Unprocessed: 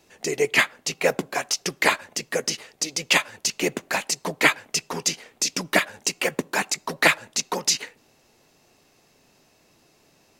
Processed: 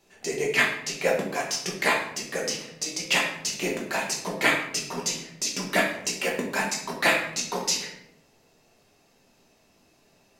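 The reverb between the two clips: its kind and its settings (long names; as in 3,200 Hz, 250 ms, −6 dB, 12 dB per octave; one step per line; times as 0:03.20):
rectangular room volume 180 cubic metres, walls mixed, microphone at 1.2 metres
level −6.5 dB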